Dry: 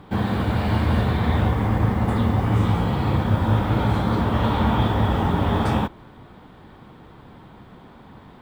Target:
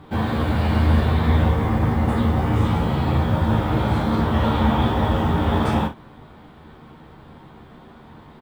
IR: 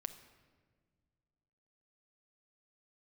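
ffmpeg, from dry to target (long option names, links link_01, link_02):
-af "aecho=1:1:13|37|63:0.708|0.447|0.251,volume=-1.5dB"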